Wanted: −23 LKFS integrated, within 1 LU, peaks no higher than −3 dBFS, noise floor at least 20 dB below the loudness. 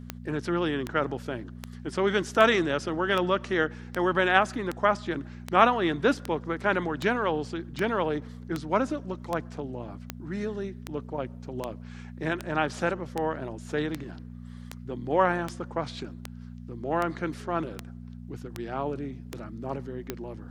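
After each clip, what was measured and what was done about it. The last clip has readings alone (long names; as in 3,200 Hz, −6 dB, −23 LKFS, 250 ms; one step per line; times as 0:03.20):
number of clicks 27; mains hum 60 Hz; hum harmonics up to 240 Hz; level of the hum −40 dBFS; integrated loudness −28.5 LKFS; sample peak −3.5 dBFS; target loudness −23.0 LKFS
→ click removal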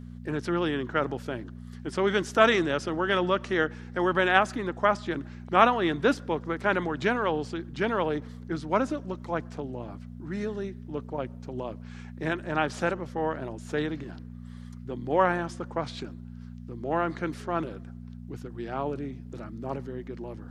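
number of clicks 0; mains hum 60 Hz; hum harmonics up to 240 Hz; level of the hum −40 dBFS
→ hum removal 60 Hz, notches 4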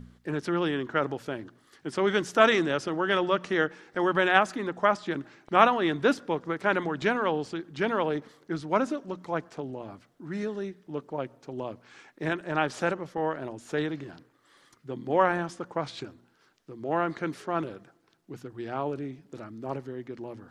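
mains hum none found; integrated loudness −28.5 LKFS; sample peak −3.5 dBFS; target loudness −23.0 LKFS
→ level +5.5 dB
brickwall limiter −3 dBFS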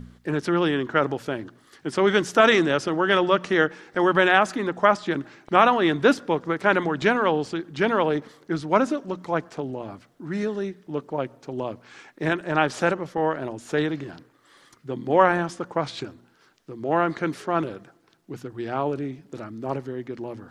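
integrated loudness −23.5 LKFS; sample peak −3.0 dBFS; background noise floor −60 dBFS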